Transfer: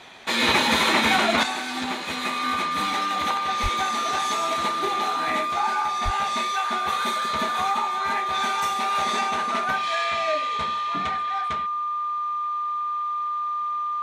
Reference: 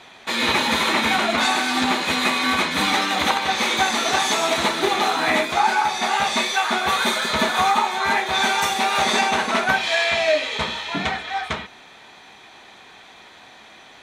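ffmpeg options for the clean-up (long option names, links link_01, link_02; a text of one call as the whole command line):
ffmpeg -i in.wav -filter_complex "[0:a]bandreject=frequency=1200:width=30,asplit=3[link_01][link_02][link_03];[link_01]afade=type=out:start_time=3.62:duration=0.02[link_04];[link_02]highpass=frequency=140:width=0.5412,highpass=frequency=140:width=1.3066,afade=type=in:start_time=3.62:duration=0.02,afade=type=out:start_time=3.74:duration=0.02[link_05];[link_03]afade=type=in:start_time=3.74:duration=0.02[link_06];[link_04][link_05][link_06]amix=inputs=3:normalize=0,asplit=3[link_07][link_08][link_09];[link_07]afade=type=out:start_time=6.04:duration=0.02[link_10];[link_08]highpass=frequency=140:width=0.5412,highpass=frequency=140:width=1.3066,afade=type=in:start_time=6.04:duration=0.02,afade=type=out:start_time=6.16:duration=0.02[link_11];[link_09]afade=type=in:start_time=6.16:duration=0.02[link_12];[link_10][link_11][link_12]amix=inputs=3:normalize=0,asetnsamples=nb_out_samples=441:pad=0,asendcmd='1.43 volume volume 8dB',volume=0dB" out.wav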